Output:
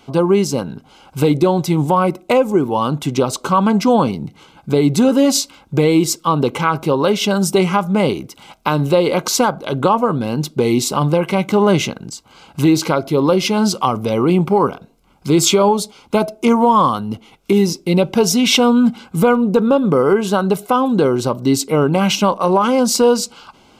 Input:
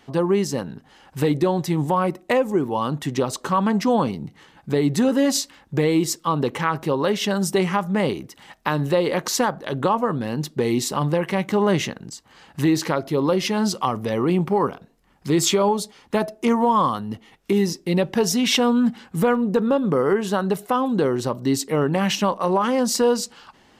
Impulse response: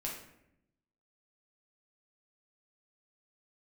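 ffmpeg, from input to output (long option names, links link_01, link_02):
-af "asuperstop=centerf=1800:order=8:qfactor=4.7,volume=6dB"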